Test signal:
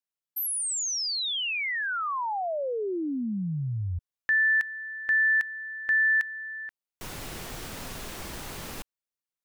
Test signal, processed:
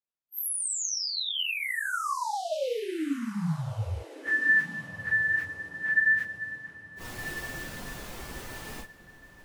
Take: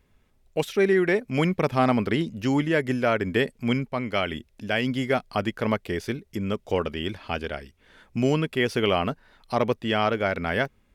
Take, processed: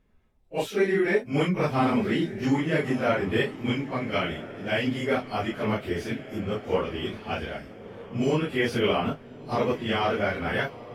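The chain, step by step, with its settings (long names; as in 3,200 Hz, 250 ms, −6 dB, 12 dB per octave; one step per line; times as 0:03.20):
random phases in long frames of 100 ms
feedback delay with all-pass diffusion 1,368 ms, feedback 41%, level −14 dB
one half of a high-frequency compander decoder only
level −1.5 dB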